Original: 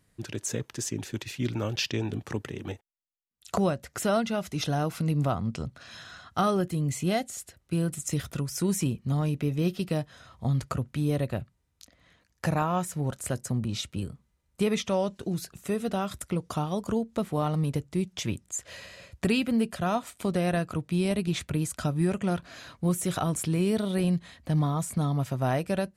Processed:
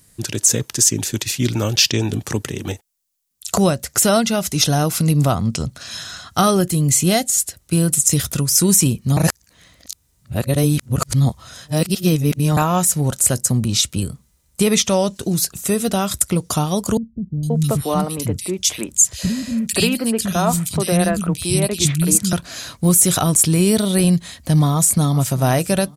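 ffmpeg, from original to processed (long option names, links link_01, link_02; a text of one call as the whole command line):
ffmpeg -i in.wav -filter_complex "[0:a]asettb=1/sr,asplit=3[link_01][link_02][link_03];[link_01]atrim=end=16.974[link_04];[link_02]atrim=start=16.97:end=22.33,asetpts=PTS-STARTPTS,afade=type=in:duration=0.004:curve=qsin,afade=type=out:start_time=5.356:duration=0.004:curve=qsin,acrossover=split=230|2400[link_05][link_06][link_07];[link_07]adelay=460[link_08];[link_06]adelay=530[link_09];[link_05][link_09][link_08]amix=inputs=3:normalize=0,atrim=end_sample=236376[link_10];[link_03]atrim=start=22.326[link_11];[link_04][link_10]acrossfade=duration=0.004:curve1=hsin:curve2=qsin[link_12];[link_12][link_11]acrossfade=duration=0.004:curve1=qsin:curve2=hsin,asplit=2[link_13][link_14];[link_14]afade=type=in:start_time=24.65:duration=0.01,afade=type=out:start_time=25.38:duration=0.01,aecho=0:1:390|780|1170:0.141254|0.0565015|0.0226006[link_15];[link_13][link_15]amix=inputs=2:normalize=0,asplit=3[link_16][link_17][link_18];[link_16]atrim=end=9.172[link_19];[link_17]atrim=start=9.168:end=12.572,asetpts=PTS-STARTPTS,areverse[link_20];[link_18]atrim=start=12.568[link_21];[link_19][link_20]acrossfade=duration=0.004:curve1=hsin:curve2=hsin[link_22];[link_22][link_21]acrossfade=duration=0.004:curve1=hsin:curve2=hsin,bass=frequency=250:gain=2,treble=frequency=4000:gain=14,alimiter=level_in=10dB:limit=-1dB:release=50:level=0:latency=1,volume=-1dB" out.wav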